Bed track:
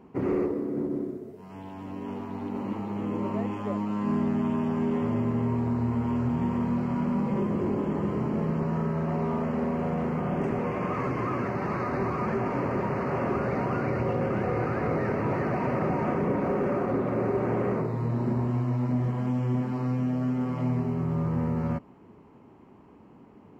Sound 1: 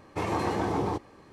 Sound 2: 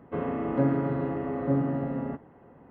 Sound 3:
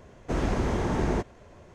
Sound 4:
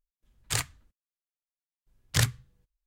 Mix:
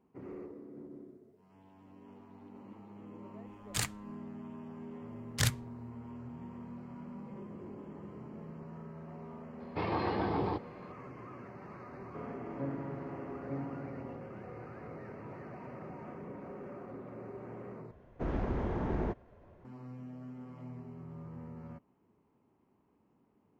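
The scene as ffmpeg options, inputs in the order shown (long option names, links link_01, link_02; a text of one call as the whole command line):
ffmpeg -i bed.wav -i cue0.wav -i cue1.wav -i cue2.wav -i cue3.wav -filter_complex "[0:a]volume=-19dB[link_01];[1:a]aresample=11025,aresample=44100[link_02];[3:a]adynamicsmooth=sensitivity=0.5:basefreq=2100[link_03];[link_01]asplit=2[link_04][link_05];[link_04]atrim=end=17.914[link_06];[link_03]atrim=end=1.74,asetpts=PTS-STARTPTS,volume=-7dB[link_07];[link_05]atrim=start=19.646[link_08];[4:a]atrim=end=2.86,asetpts=PTS-STARTPTS,volume=-5dB,afade=type=in:duration=0.004:curve=hsin,afade=type=out:start_time=2.856:duration=0.004:curve=hsin,adelay=3240[link_09];[link_02]atrim=end=1.32,asetpts=PTS-STARTPTS,volume=-4.5dB,afade=type=in:duration=0.004:curve=hsin,afade=type=out:start_time=1.316:duration=0.004:curve=hsin,adelay=9600[link_10];[2:a]atrim=end=2.7,asetpts=PTS-STARTPTS,volume=-14dB,afade=type=in:duration=0.004:curve=hsin,afade=type=out:start_time=2.696:duration=0.004:curve=hsin,adelay=12020[link_11];[link_06][link_07]acrossfade=duration=0.004:curve1=hsin:curve2=hsin[link_12];[link_12][link_08]acrossfade=duration=0.004:curve1=hsin:curve2=hsin[link_13];[link_13][link_09][link_10][link_11]amix=inputs=4:normalize=0" out.wav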